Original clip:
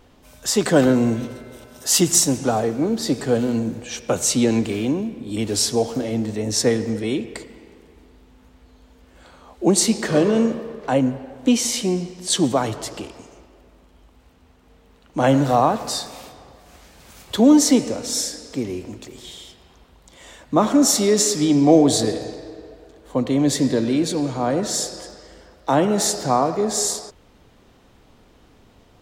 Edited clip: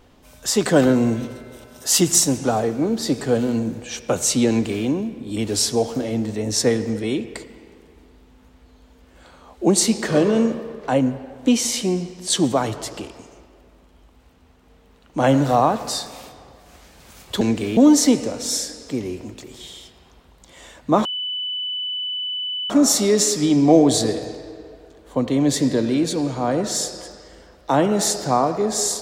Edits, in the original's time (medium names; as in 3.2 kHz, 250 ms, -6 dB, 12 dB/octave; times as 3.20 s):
4.49–4.85 s: copy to 17.41 s
20.69 s: add tone 2.99 kHz -23.5 dBFS 1.65 s